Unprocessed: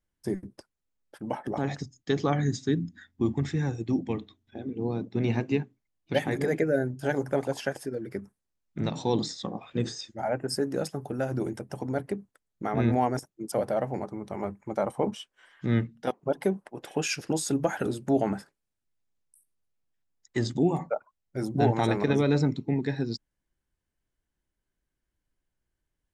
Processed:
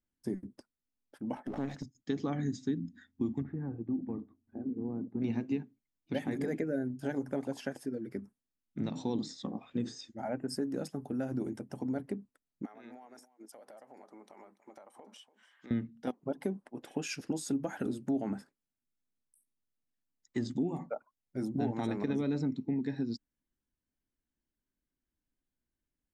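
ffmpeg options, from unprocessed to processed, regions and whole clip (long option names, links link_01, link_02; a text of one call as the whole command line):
ffmpeg -i in.wav -filter_complex "[0:a]asettb=1/sr,asplit=3[link_01][link_02][link_03];[link_01]atrim=end=1.354[link_04];[link_02]atrim=start=1.35:end=1.95,asetpts=PTS-STARTPTS,afade=type=in:duration=0.004:curve=qsin,afade=type=out:start_time=0.596:duration=0.004:curve=qsin,agate=range=-33dB:threshold=-45dB:ratio=3:release=100:detection=peak,aeval=exprs='clip(val(0),-1,0.015)':channel_layout=same[link_05];[link_03]atrim=start=1.946[link_06];[link_04][link_05]acrossfade=duration=0.004:curve1=hsin:curve2=qsin[link_07];[link_07][link_06]acrossfade=duration=0.004:curve1=qsin:curve2=hsin,asettb=1/sr,asplit=3[link_08][link_09][link_10];[link_08]atrim=end=3.424[link_11];[link_09]atrim=start=3.42:end=5.22,asetpts=PTS-STARTPTS,afade=type=in:duration=0.004:curve=qsin,afade=type=out:start_time=1.796:duration=0.004:curve=qsin,lowpass=frequency=1400:width=0.5412,lowpass=frequency=1400:width=1.3066,acompressor=threshold=-31dB:ratio=2:attack=3.2:release=140:knee=1:detection=peak[link_12];[link_10]atrim=start=5.216[link_13];[link_11][link_12]acrossfade=duration=0.004:curve1=hsin:curve2=qsin[link_14];[link_14][link_13]acrossfade=duration=0.004:curve1=qsin:curve2=hsin,asettb=1/sr,asplit=3[link_15][link_16][link_17];[link_15]atrim=end=12.654[link_18];[link_16]atrim=start=12.65:end=15.71,asetpts=PTS-STARTPTS,afade=type=in:duration=0.004:curve=qsin,afade=type=out:start_time=3.056:duration=0.004:curve=qsin,highpass=630,acompressor=threshold=-41dB:ratio=16:attack=3.2:release=140:knee=1:detection=peak,aecho=1:1:289:0.141,atrim=end_sample=134946[link_19];[link_17]atrim=start=15.706[link_20];[link_18][link_19]acrossfade=duration=0.004:curve1=hsin:curve2=qsin[link_21];[link_21][link_20]acrossfade=duration=0.004:curve1=qsin:curve2=hsin,equalizer=frequency=250:width_type=o:width=0.66:gain=11,acompressor=threshold=-22dB:ratio=2.5,volume=-8.5dB" out.wav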